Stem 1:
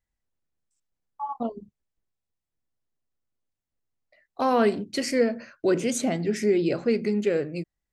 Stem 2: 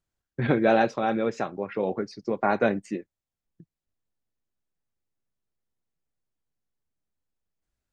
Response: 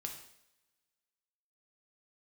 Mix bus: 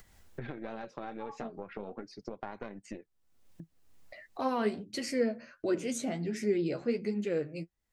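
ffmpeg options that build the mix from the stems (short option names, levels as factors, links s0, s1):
-filter_complex "[0:a]flanger=delay=8.2:depth=6.5:regen=29:speed=1.4:shape=triangular,volume=0.562[s0];[1:a]acompressor=threshold=0.0447:ratio=6,aeval=exprs='(tanh(8.91*val(0)+0.75)-tanh(0.75))/8.91':c=same,flanger=delay=0.9:depth=5.9:regen=61:speed=0.38:shape=sinusoidal,volume=0.501,asplit=2[s1][s2];[s2]apad=whole_len=349500[s3];[s0][s3]sidechaincompress=threshold=0.00447:ratio=8:attack=16:release=617[s4];[s4][s1]amix=inputs=2:normalize=0,acompressor=mode=upward:threshold=0.0224:ratio=2.5"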